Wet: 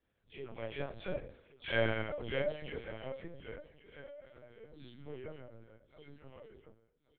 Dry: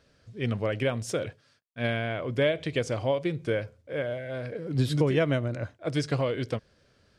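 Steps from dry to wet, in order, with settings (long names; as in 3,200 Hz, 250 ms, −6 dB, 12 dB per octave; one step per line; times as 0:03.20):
every frequency bin delayed by itself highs early, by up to 219 ms
source passing by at 0:01.60, 16 m/s, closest 4 metres
mains-hum notches 50/100/150/200/250 Hz
tuned comb filter 76 Hz, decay 0.74 s, harmonics all, mix 60%
multi-voice chorus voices 6, 0.81 Hz, delay 29 ms, depth 2.6 ms
notch comb filter 250 Hz
repeating echo 1,117 ms, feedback 36%, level −18 dB
on a send at −21 dB: convolution reverb RT60 0.45 s, pre-delay 68 ms
on the sum: linear-prediction vocoder at 8 kHz pitch kept
level +10.5 dB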